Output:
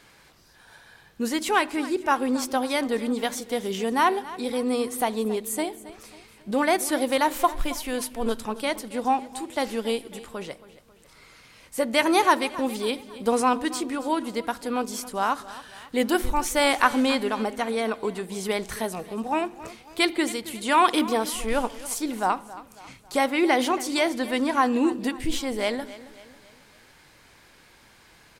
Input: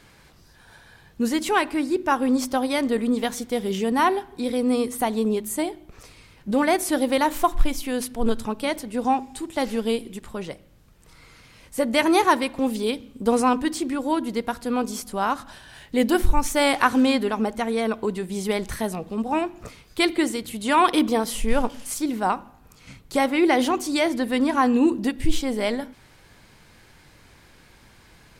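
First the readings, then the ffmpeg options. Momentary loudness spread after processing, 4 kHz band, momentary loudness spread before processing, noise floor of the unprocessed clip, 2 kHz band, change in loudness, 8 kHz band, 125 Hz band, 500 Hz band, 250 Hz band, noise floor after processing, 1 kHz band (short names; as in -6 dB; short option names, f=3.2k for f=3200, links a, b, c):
11 LU, 0.0 dB, 10 LU, -53 dBFS, 0.0 dB, -2.0 dB, 0.0 dB, -6.5 dB, -2.0 dB, -4.0 dB, -55 dBFS, -0.5 dB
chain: -af "lowshelf=f=240:g=-9.5,aecho=1:1:273|546|819|1092:0.141|0.065|0.0299|0.0137"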